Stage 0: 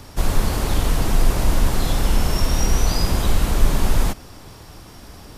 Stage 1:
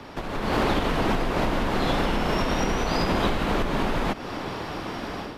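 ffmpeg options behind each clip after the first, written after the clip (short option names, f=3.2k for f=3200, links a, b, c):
-filter_complex "[0:a]acompressor=threshold=-25dB:ratio=5,acrossover=split=170 3800:gain=0.178 1 0.0891[a][b][c];[a][b][c]amix=inputs=3:normalize=0,dynaudnorm=f=260:g=3:m=10dB,volume=3.5dB"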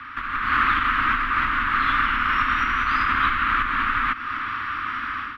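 -af "lowshelf=f=200:g=-9,asoftclip=type=hard:threshold=-17dB,firequalizer=gain_entry='entry(100,0);entry(170,-18);entry(250,-4);entry(430,-26);entry(750,-23);entry(1200,12);entry(4900,-15);entry(7900,-22);entry(12000,-13)':delay=0.05:min_phase=1,volume=3dB"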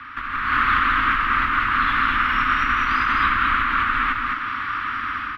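-af "aecho=1:1:208:0.708"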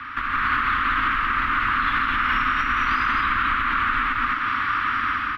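-af "alimiter=limit=-15.5dB:level=0:latency=1:release=150,volume=3dB"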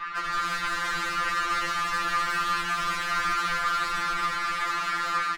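-af "asoftclip=type=tanh:threshold=-28.5dB,aecho=1:1:375:0.473,afftfilt=real='re*2.83*eq(mod(b,8),0)':imag='im*2.83*eq(mod(b,8),0)':win_size=2048:overlap=0.75,volume=4dB"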